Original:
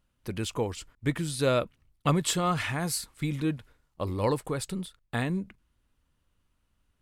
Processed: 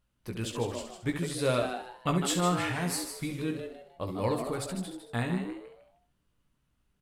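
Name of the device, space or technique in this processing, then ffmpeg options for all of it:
slapback doubling: -filter_complex "[0:a]asplit=3[link_01][link_02][link_03];[link_02]adelay=17,volume=-5.5dB[link_04];[link_03]adelay=68,volume=-8dB[link_05];[link_01][link_04][link_05]amix=inputs=3:normalize=0,asplit=5[link_06][link_07][link_08][link_09][link_10];[link_07]adelay=153,afreqshift=130,volume=-8dB[link_11];[link_08]adelay=306,afreqshift=260,volume=-18.5dB[link_12];[link_09]adelay=459,afreqshift=390,volume=-28.9dB[link_13];[link_10]adelay=612,afreqshift=520,volume=-39.4dB[link_14];[link_06][link_11][link_12][link_13][link_14]amix=inputs=5:normalize=0,volume=-4dB"

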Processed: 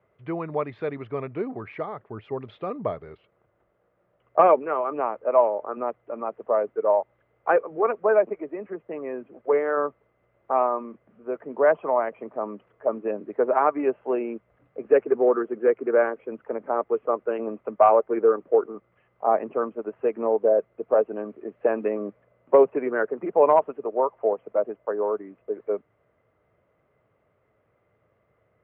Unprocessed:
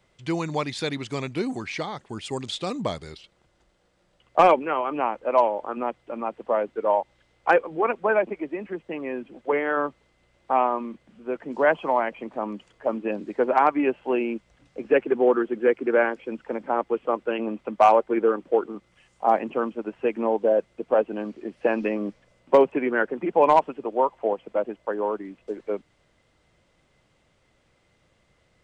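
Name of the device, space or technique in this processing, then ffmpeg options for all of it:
bass cabinet: -af "highpass=66,equalizer=frequency=110:width_type=q:width=4:gain=7,equalizer=frequency=430:width_type=q:width=4:gain=9,equalizer=frequency=630:width_type=q:width=4:gain=8,equalizer=frequency=1200:width_type=q:width=4:gain=7,lowpass=frequency=2200:width=0.5412,lowpass=frequency=2200:width=1.3066,volume=-6dB"

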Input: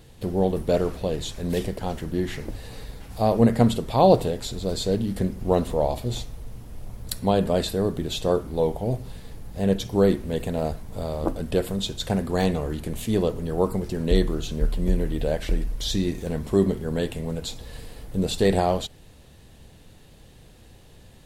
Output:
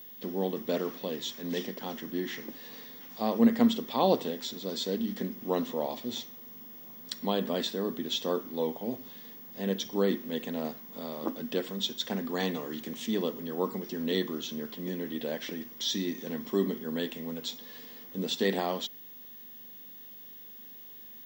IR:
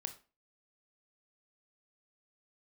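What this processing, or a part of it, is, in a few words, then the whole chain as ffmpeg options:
old television with a line whistle: -filter_complex "[0:a]asettb=1/sr,asplit=3[link_01][link_02][link_03];[link_01]atrim=end=12.544[link_04];[link_02]atrim=start=12.54:end=13.07,asetpts=PTS-STARTPTS,afade=type=in:duration=0.004:curve=qsin,afade=type=out:start_time=0.526:duration=0.004:curve=qsin,highshelf=frequency=6400:gain=6.5[link_05];[link_03]atrim=start=13.066[link_06];[link_04][link_05]acrossfade=duration=0.004:curve1=hsin:curve2=qsin[link_07];[link_07][link_06]acrossfade=duration=0.004:curve1=qsin:curve2=hsin,highpass=frequency=200:width=0.5412,highpass=frequency=200:width=1.3066,equalizer=frequency=240:width_type=q:width=4:gain=8,equalizer=frequency=650:width_type=q:width=4:gain=-4,equalizer=frequency=1100:width_type=q:width=4:gain=5,equalizer=frequency=1900:width_type=q:width=4:gain=7,equalizer=frequency=3300:width_type=q:width=4:gain=9,equalizer=frequency=5700:width_type=q:width=4:gain=9,lowpass=frequency=7200:width=0.5412,lowpass=frequency=7200:width=1.3066,aeval=exprs='val(0)+0.0141*sin(2*PI*15625*n/s)':channel_layout=same,volume=-8dB"

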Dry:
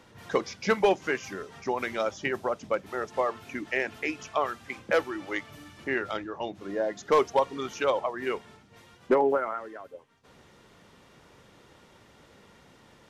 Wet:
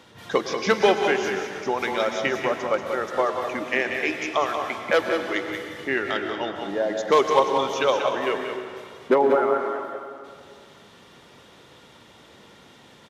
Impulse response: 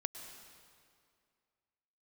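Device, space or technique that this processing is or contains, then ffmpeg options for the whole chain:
PA in a hall: -filter_complex "[0:a]highpass=frequency=110:poles=1,equalizer=frequency=3500:width_type=o:width=0.49:gain=6,aecho=1:1:186:0.447[link_01];[1:a]atrim=start_sample=2205[link_02];[link_01][link_02]afir=irnorm=-1:irlink=0,volume=5.5dB"

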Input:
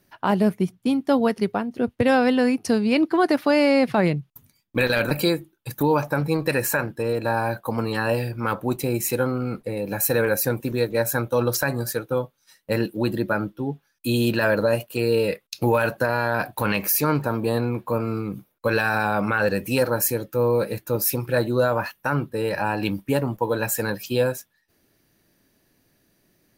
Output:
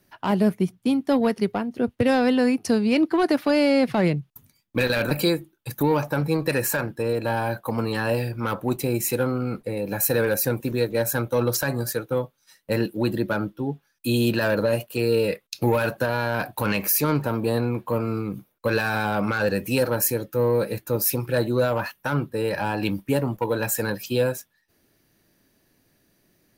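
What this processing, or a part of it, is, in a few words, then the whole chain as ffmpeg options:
one-band saturation: -filter_complex "[0:a]acrossover=split=480|3000[link_01][link_02][link_03];[link_02]asoftclip=type=tanh:threshold=-21dB[link_04];[link_01][link_04][link_03]amix=inputs=3:normalize=0"

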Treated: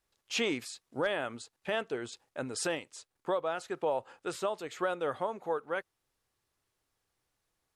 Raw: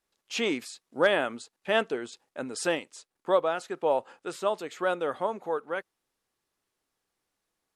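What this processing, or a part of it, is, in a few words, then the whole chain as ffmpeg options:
car stereo with a boomy subwoofer: -af "lowshelf=frequency=150:width_type=q:width=1.5:gain=6.5,alimiter=limit=-21dB:level=0:latency=1:release=338"

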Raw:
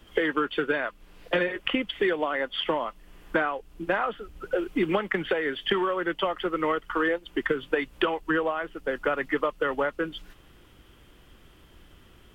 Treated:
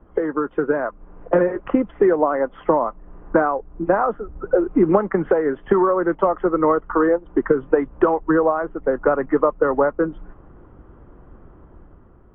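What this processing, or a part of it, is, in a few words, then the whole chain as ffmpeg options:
action camera in a waterproof case: -af "lowpass=frequency=1200:width=0.5412,lowpass=frequency=1200:width=1.3066,dynaudnorm=framelen=190:gausssize=7:maxgain=5.5dB,volume=4.5dB" -ar 22050 -c:a aac -b:a 48k

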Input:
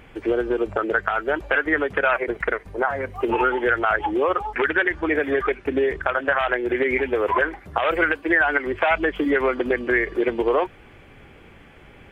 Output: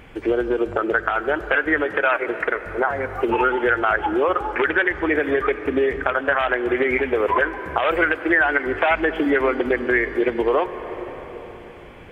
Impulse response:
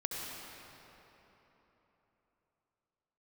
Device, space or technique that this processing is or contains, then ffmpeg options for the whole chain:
ducked reverb: -filter_complex "[0:a]asettb=1/sr,asplit=3[link_01][link_02][link_03];[link_01]atrim=end=1.854[link_04];[link_02]atrim=start=1.85:end=2.56,asetpts=PTS-STARTPTS,afade=type=in:duration=0.004:curve=qsin,afade=type=out:start_time=0.706:duration=0.004:curve=qsin,highpass=frequency=250:poles=1[link_05];[link_03]atrim=start=2.556[link_06];[link_04][link_05]acrossfade=duration=0.004:curve1=hsin:curve2=qsin[link_07];[link_07][link_06]acrossfade=duration=0.004:curve1=qsin:curve2=hsin,asplit=3[link_08][link_09][link_10];[1:a]atrim=start_sample=2205[link_11];[link_09][link_11]afir=irnorm=-1:irlink=0[link_12];[link_10]apad=whole_len=534319[link_13];[link_12][link_13]sidechaincompress=threshold=-22dB:ratio=8:attack=8.1:release=518,volume=-7.5dB[link_14];[link_08][link_14]amix=inputs=2:normalize=0"

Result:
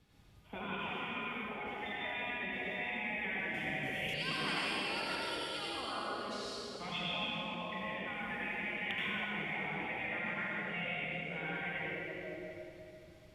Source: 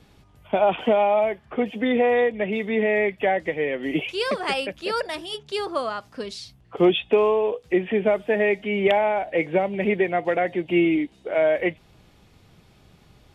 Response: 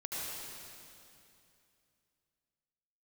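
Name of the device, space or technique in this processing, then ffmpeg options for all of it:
stairwell: -filter_complex "[1:a]atrim=start_sample=2205[link_01];[0:a][link_01]afir=irnorm=-1:irlink=0,asettb=1/sr,asplit=3[link_02][link_03][link_04];[link_02]atrim=end=3.544[link_05];[link_03]atrim=start=3.54:end=4.14,asetpts=PTS-STARTPTS,afade=type=in:duration=0.004:curve=qsin,afade=type=out:start_time=0.596:duration=0.004:curve=qsin,bass=frequency=250:gain=4,treble=frequency=4000:gain=12[link_06];[link_04]atrim=start=4.136[link_07];[link_05][link_06]acrossfade=duration=0.004:curve1=hsin:curve2=qsin[link_08];[link_08][link_07]acrossfade=duration=0.004:curve1=qsin:curve2=hsin,afftfilt=real='re*lt(hypot(re,im),0.282)':imag='im*lt(hypot(re,im),0.282)':win_size=1024:overlap=0.75,equalizer=frequency=540:width_type=o:width=2.1:gain=-4,volume=-8.5dB"

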